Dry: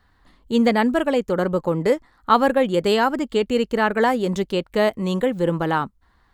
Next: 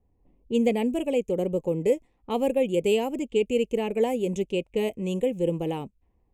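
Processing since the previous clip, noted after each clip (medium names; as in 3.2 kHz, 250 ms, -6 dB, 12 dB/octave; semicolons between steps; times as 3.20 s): band-stop 630 Hz, Q 12; level-controlled noise filter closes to 920 Hz, open at -18 dBFS; FFT filter 280 Hz 0 dB, 450 Hz +4 dB, 660 Hz -1 dB, 980 Hz -11 dB, 1.5 kHz -27 dB, 2.5 kHz +6 dB, 4.4 kHz -15 dB, 6.5 kHz +4 dB; trim -6 dB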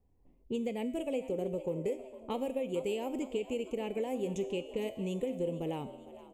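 compression 5:1, threshold -29 dBFS, peak gain reduction 11 dB; feedback comb 130 Hz, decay 1.1 s, harmonics all, mix 70%; frequency-shifting echo 457 ms, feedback 54%, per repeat +63 Hz, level -16 dB; trim +6.5 dB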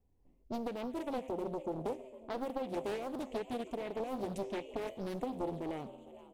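loudspeaker Doppler distortion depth 0.81 ms; trim -3 dB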